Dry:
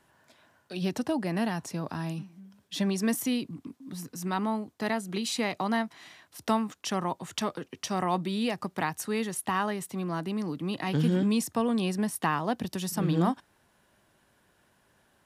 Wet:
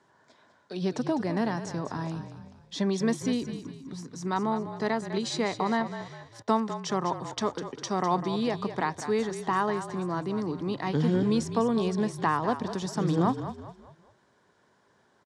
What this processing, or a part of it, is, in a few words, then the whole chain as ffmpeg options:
car door speaker: -filter_complex "[0:a]asplit=5[a][b][c][d][e];[b]adelay=202,afreqshift=-38,volume=-10.5dB[f];[c]adelay=404,afreqshift=-76,volume=-18.2dB[g];[d]adelay=606,afreqshift=-114,volume=-26dB[h];[e]adelay=808,afreqshift=-152,volume=-33.7dB[i];[a][f][g][h][i]amix=inputs=5:normalize=0,asettb=1/sr,asplit=3[j][k][l];[j]atrim=end=6.424[m];[k]atrim=start=6.42:end=7.37,asetpts=PTS-STARTPTS,afade=t=in:d=0.004:c=qsin,afade=t=out:st=0.946:d=0.004:c=qsin,agate=range=-14dB:threshold=-38dB:ratio=16:detection=peak[n];[l]atrim=start=7.366[o];[m][n]acrossfade=d=0.004:c1=hsin:c2=qsin[p];[p][o]acrossfade=d=0.004:c1=qsin:c2=hsin,highpass=100,equalizer=f=420:t=q:w=4:g=6,equalizer=f=1k:t=q:w=4:g=4,equalizer=f=2.7k:t=q:w=4:g=-9,lowpass=f=7.2k:w=0.5412,lowpass=f=7.2k:w=1.3066"

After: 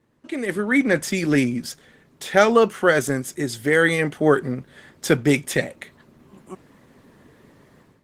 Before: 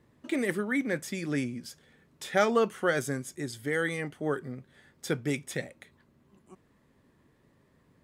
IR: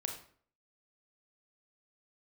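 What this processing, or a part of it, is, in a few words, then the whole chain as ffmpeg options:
video call: -af "highpass=f=120:p=1,dynaudnorm=f=410:g=3:m=16dB" -ar 48000 -c:a libopus -b:a 16k

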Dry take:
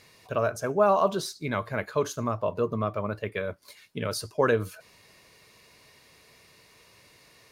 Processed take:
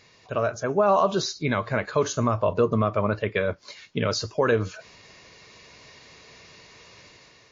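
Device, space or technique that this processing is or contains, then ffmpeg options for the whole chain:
low-bitrate web radio: -filter_complex "[0:a]asettb=1/sr,asplit=3[a][b][c];[a]atrim=end=1.994[d];[b]atrim=start=1.99:end=2.53,asetpts=PTS-STARTPTS,afade=t=in:d=0.004:c=qsin,afade=t=out:st=0.536:d=0.004:c=qsin,asubboost=boost=8:cutoff=120[e];[c]atrim=start=2.526[f];[d][e]acrossfade=d=0.004:c1=hsin:c2=qsin[g];[g][f]acrossfade=d=0.004:c1=qsin:c2=hsin,dynaudnorm=f=540:g=3:m=7dB,alimiter=limit=-11.5dB:level=0:latency=1:release=143,volume=1dB" -ar 16000 -c:a libmp3lame -b:a 32k

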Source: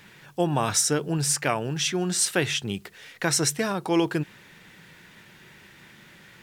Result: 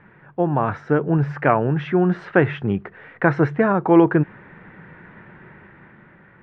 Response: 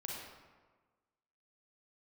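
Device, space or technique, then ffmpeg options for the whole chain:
action camera in a waterproof case: -af "lowpass=f=1.7k:w=0.5412,lowpass=f=1.7k:w=1.3066,dynaudnorm=f=280:g=7:m=6.5dB,volume=3.5dB" -ar 22050 -c:a aac -b:a 96k

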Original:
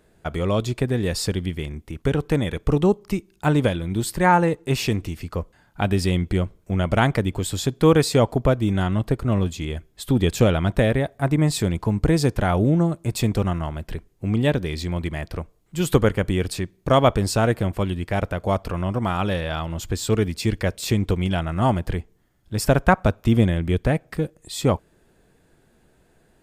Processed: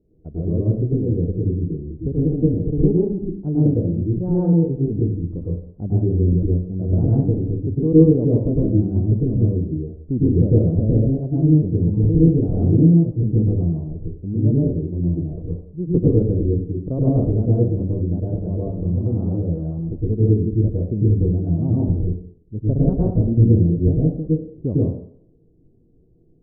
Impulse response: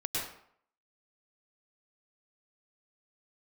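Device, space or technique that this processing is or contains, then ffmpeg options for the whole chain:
next room: -filter_complex "[0:a]lowpass=f=410:w=0.5412,lowpass=f=410:w=1.3066[a];[1:a]atrim=start_sample=2205[b];[a][b]afir=irnorm=-1:irlink=0,volume=-1.5dB"

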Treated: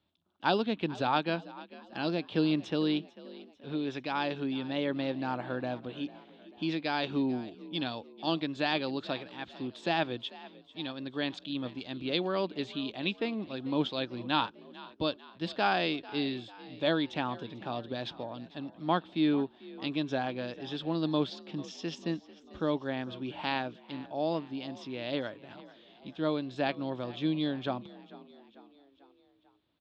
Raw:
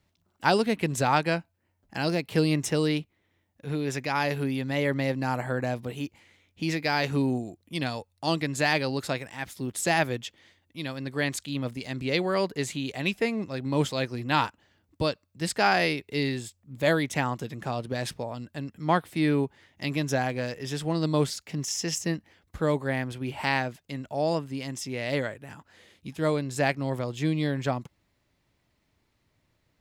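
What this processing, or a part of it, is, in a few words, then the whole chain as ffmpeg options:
frequency-shifting delay pedal into a guitar cabinet: -filter_complex "[0:a]asplit=5[a][b][c][d][e];[b]adelay=445,afreqshift=46,volume=-19dB[f];[c]adelay=890,afreqshift=92,volume=-24.5dB[g];[d]adelay=1335,afreqshift=138,volume=-30dB[h];[e]adelay=1780,afreqshift=184,volume=-35.5dB[i];[a][f][g][h][i]amix=inputs=5:normalize=0,highpass=84,equalizer=f=95:t=q:w=4:g=-8,equalizer=f=140:t=q:w=4:g=-7,equalizer=f=310:t=q:w=4:g=4,equalizer=f=460:t=q:w=4:g=-3,equalizer=f=2k:t=q:w=4:g=-10,equalizer=f=3.5k:t=q:w=4:g=9,lowpass=f=4k:w=0.5412,lowpass=f=4k:w=1.3066,volume=-4.5dB"

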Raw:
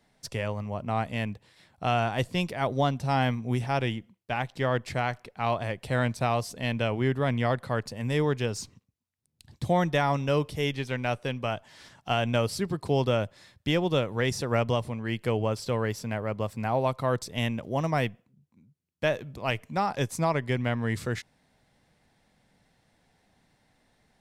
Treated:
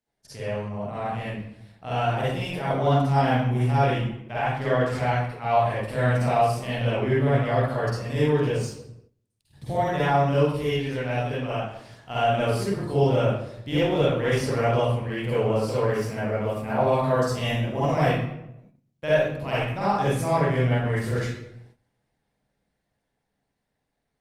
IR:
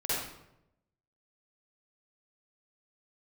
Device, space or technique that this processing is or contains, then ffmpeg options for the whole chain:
speakerphone in a meeting room: -filter_complex "[1:a]atrim=start_sample=2205[a];[0:a][a]afir=irnorm=-1:irlink=0,dynaudnorm=f=460:g=11:m=10.5dB,agate=range=-11dB:threshold=-45dB:ratio=16:detection=peak,volume=-7.5dB" -ar 48000 -c:a libopus -b:a 32k

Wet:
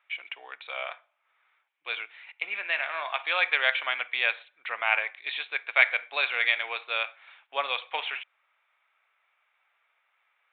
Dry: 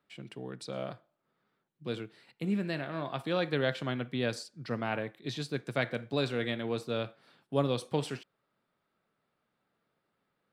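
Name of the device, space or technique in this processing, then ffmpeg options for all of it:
musical greeting card: -af "aresample=8000,aresample=44100,highpass=f=790:w=0.5412,highpass=f=790:w=1.3066,equalizer=f=2.3k:t=o:w=0.47:g=12,volume=8dB"

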